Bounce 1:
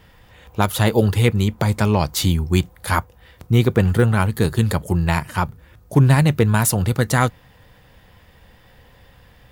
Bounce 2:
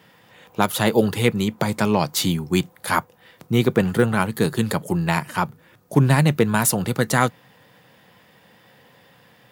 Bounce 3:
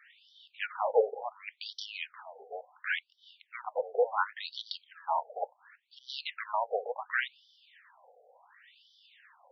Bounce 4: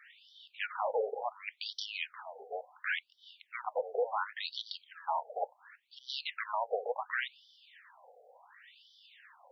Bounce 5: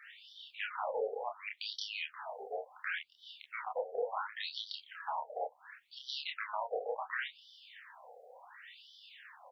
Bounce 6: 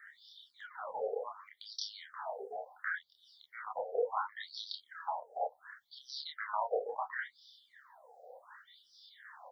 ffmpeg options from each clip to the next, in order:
ffmpeg -i in.wav -af "highpass=frequency=140:width=0.5412,highpass=frequency=140:width=1.3066" out.wav
ffmpeg -i in.wav -af "asoftclip=type=tanh:threshold=-14.5dB,afftfilt=real='re*between(b*sr/1024,560*pow(4300/560,0.5+0.5*sin(2*PI*0.7*pts/sr))/1.41,560*pow(4300/560,0.5+0.5*sin(2*PI*0.7*pts/sr))*1.41)':imag='im*between(b*sr/1024,560*pow(4300/560,0.5+0.5*sin(2*PI*0.7*pts/sr))/1.41,560*pow(4300/560,0.5+0.5*sin(2*PI*0.7*pts/sr))*1.41)':win_size=1024:overlap=0.75" out.wav
ffmpeg -i in.wav -af "alimiter=level_in=0.5dB:limit=-24dB:level=0:latency=1:release=105,volume=-0.5dB,volume=1.5dB" out.wav
ffmpeg -i in.wav -filter_complex "[0:a]acrossover=split=270[link_01][link_02];[link_02]acompressor=threshold=-44dB:ratio=2[link_03];[link_01][link_03]amix=inputs=2:normalize=0,asplit=2[link_04][link_05];[link_05]aecho=0:1:28|41:0.708|0.251[link_06];[link_04][link_06]amix=inputs=2:normalize=0,volume=2dB" out.wav
ffmpeg -i in.wav -filter_complex "[0:a]asuperstop=centerf=2600:order=4:qfactor=1.4,asplit=2[link_01][link_02];[link_02]afreqshift=-2.5[link_03];[link_01][link_03]amix=inputs=2:normalize=1,volume=4dB" out.wav

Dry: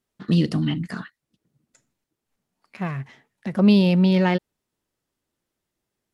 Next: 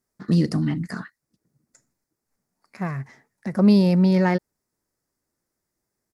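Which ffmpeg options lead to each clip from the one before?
ffmpeg -i in.wav -af "firequalizer=gain_entry='entry(2000,0);entry(3000,-14);entry(4900,3)':delay=0.05:min_phase=1" out.wav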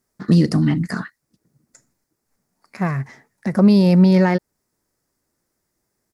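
ffmpeg -i in.wav -af "alimiter=limit=-11.5dB:level=0:latency=1:release=324,volume=6.5dB" out.wav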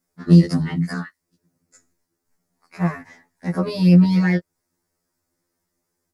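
ffmpeg -i in.wav -af "afftfilt=real='re*2*eq(mod(b,4),0)':imag='im*2*eq(mod(b,4),0)':win_size=2048:overlap=0.75" out.wav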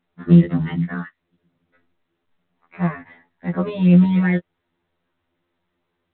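ffmpeg -i in.wav -ar 8000 -c:a pcm_mulaw out.wav

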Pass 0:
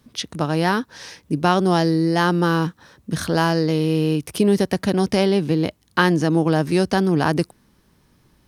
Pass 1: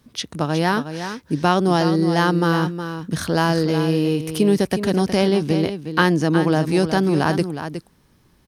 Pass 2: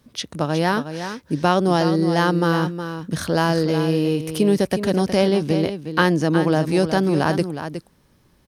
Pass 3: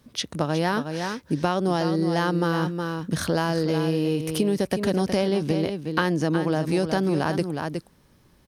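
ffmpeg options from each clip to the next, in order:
ffmpeg -i in.wav -af "aecho=1:1:365:0.335" out.wav
ffmpeg -i in.wav -af "equalizer=frequency=560:width_type=o:width=0.32:gain=4.5,volume=-1dB" out.wav
ffmpeg -i in.wav -af "acompressor=threshold=-19dB:ratio=6" out.wav

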